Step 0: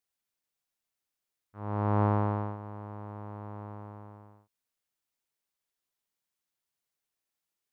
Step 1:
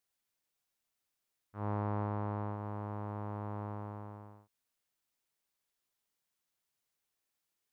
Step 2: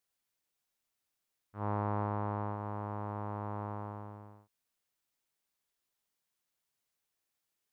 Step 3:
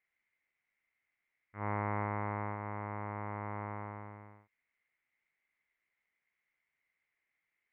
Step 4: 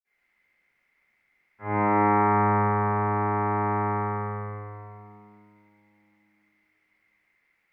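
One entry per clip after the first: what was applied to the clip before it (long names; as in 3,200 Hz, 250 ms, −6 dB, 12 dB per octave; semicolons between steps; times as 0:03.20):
downward compressor 12 to 1, threshold −33 dBFS, peak gain reduction 12.5 dB; level +1.5 dB
dynamic equaliser 1,000 Hz, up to +4 dB, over −47 dBFS, Q 0.77
low-pass with resonance 2,100 Hz, resonance Q 12; level −2.5 dB
convolution reverb RT60 2.7 s, pre-delay 46 ms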